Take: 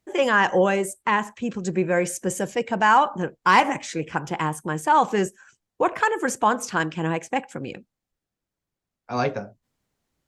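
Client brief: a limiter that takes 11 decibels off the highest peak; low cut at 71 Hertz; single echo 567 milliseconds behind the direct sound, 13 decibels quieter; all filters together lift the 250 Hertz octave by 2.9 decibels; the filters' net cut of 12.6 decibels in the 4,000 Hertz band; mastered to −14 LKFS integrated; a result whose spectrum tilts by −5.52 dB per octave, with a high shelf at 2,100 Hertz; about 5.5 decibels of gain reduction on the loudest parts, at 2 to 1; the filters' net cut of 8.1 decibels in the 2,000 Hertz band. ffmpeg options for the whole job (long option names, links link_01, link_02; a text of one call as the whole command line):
ffmpeg -i in.wav -af "highpass=71,equalizer=frequency=250:width_type=o:gain=4.5,equalizer=frequency=2000:width_type=o:gain=-5.5,highshelf=frequency=2100:gain=-7.5,equalizer=frequency=4000:width_type=o:gain=-8.5,acompressor=threshold=-24dB:ratio=2,alimiter=limit=-22.5dB:level=0:latency=1,aecho=1:1:567:0.224,volume=19dB" out.wav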